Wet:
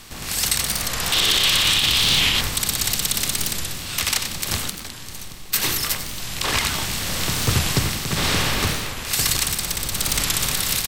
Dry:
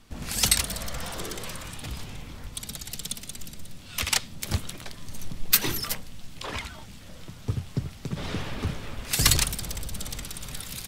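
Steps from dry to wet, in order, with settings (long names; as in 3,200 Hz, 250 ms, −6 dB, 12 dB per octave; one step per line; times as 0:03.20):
compressor on every frequency bin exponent 0.6
0:04.70–0:05.55: noise gate −18 dBFS, range −9 dB
echo with shifted repeats 92 ms, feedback 57%, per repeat +43 Hz, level −13 dB
hard clipping −4 dBFS, distortion −38 dB
low-shelf EQ 370 Hz −7.5 dB
automatic gain control gain up to 15 dB
0:01.12–0:02.41: parametric band 3,300 Hz +14 dB 1 octave
brickwall limiter −6.5 dBFS, peak gain reduction 7 dB
wow of a warped record 45 rpm, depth 160 cents
level −1 dB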